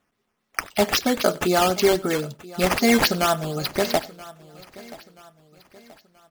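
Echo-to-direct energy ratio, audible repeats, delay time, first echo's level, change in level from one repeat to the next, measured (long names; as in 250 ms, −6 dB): −17.5 dB, 3, 95 ms, −22.5 dB, repeats not evenly spaced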